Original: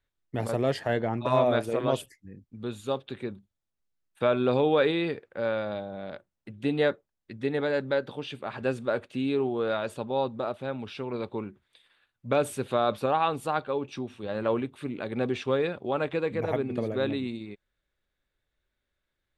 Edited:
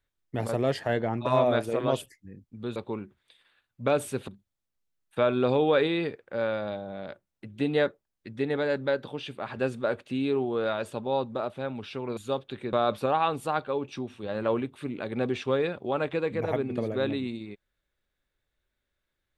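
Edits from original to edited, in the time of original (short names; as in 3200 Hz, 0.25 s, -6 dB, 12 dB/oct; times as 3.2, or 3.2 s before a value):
2.76–3.32 swap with 11.21–12.73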